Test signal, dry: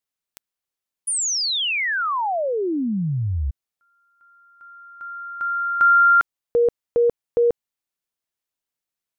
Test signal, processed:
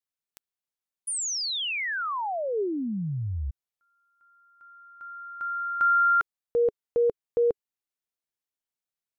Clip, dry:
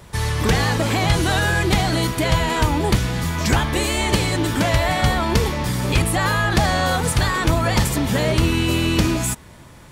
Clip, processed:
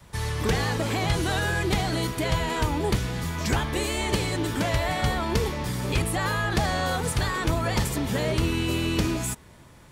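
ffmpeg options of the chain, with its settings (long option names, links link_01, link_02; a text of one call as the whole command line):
ffmpeg -i in.wav -af "adynamicequalizer=threshold=0.0178:dfrequency=420:dqfactor=4.1:tfrequency=420:tqfactor=4.1:attack=5:release=100:ratio=0.375:range=2:mode=boostabove:tftype=bell,volume=-7dB" out.wav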